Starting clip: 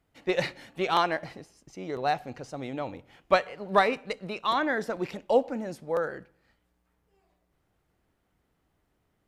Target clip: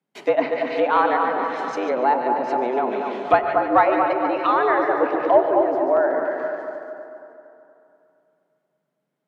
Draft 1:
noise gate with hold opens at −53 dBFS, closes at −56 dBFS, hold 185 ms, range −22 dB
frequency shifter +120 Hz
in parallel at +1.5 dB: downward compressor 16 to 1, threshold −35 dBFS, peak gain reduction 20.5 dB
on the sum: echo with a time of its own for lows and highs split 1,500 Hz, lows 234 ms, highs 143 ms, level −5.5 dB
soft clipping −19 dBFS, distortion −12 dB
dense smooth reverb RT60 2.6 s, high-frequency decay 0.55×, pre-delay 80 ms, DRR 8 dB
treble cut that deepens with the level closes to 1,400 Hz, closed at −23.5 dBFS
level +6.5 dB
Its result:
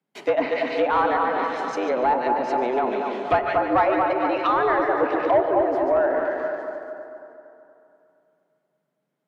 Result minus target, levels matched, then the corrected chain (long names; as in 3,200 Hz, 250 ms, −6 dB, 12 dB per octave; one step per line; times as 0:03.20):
soft clipping: distortion +11 dB
noise gate with hold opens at −53 dBFS, closes at −56 dBFS, hold 185 ms, range −22 dB
frequency shifter +120 Hz
in parallel at +1.5 dB: downward compressor 16 to 1, threshold −35 dBFS, peak gain reduction 20.5 dB
on the sum: echo with a time of its own for lows and highs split 1,500 Hz, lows 234 ms, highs 143 ms, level −5.5 dB
soft clipping −9.5 dBFS, distortion −23 dB
dense smooth reverb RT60 2.6 s, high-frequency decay 0.55×, pre-delay 80 ms, DRR 8 dB
treble cut that deepens with the level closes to 1,400 Hz, closed at −23.5 dBFS
level +6.5 dB